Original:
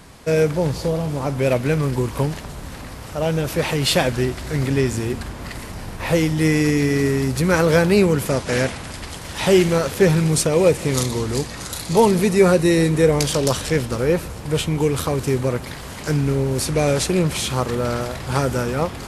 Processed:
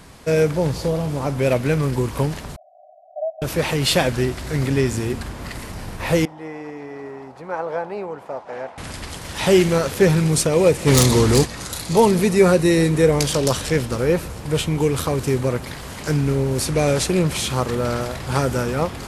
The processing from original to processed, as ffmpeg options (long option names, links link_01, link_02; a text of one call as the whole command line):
ffmpeg -i in.wav -filter_complex "[0:a]asettb=1/sr,asplit=3[link_01][link_02][link_03];[link_01]atrim=end=2.564[link_04];[link_02]atrim=start=2.56:end=3.42,asetpts=PTS-STARTPTS,afade=type=in:duration=0.004:curve=qsin,afade=type=out:start_time=0.856:duration=0.004:curve=qsin,asuperpass=centerf=670:order=12:qfactor=3.9[link_05];[link_03]atrim=start=3.416[link_06];[link_04][link_05]acrossfade=duration=0.004:curve1=hsin:curve2=qsin[link_07];[link_07][link_06]acrossfade=duration=0.004:curve1=qsin:curve2=hsin,asettb=1/sr,asplit=3[link_08][link_09][link_10];[link_08]atrim=end=6.254[link_11];[link_09]atrim=start=6.25:end=8.78,asetpts=PTS-STARTPTS,afade=type=in:duration=0.004:curve=qsin,afade=type=out:start_time=2.526:duration=0.004:curve=qsin,bandpass=frequency=800:width_type=q:width=3[link_12];[link_10]atrim=start=8.776[link_13];[link_11][link_12]acrossfade=duration=0.004:curve1=hsin:curve2=qsin[link_14];[link_14][link_13]acrossfade=duration=0.004:curve1=qsin:curve2=hsin,asplit=3[link_15][link_16][link_17];[link_15]afade=type=out:start_time=10.86:duration=0.02[link_18];[link_16]aeval=exprs='0.422*sin(PI/2*1.78*val(0)/0.422)':channel_layout=same,afade=type=in:start_time=10.86:duration=0.02,afade=type=out:start_time=11.44:duration=0.02[link_19];[link_17]afade=type=in:start_time=11.44:duration=0.02[link_20];[link_18][link_19][link_20]amix=inputs=3:normalize=0" out.wav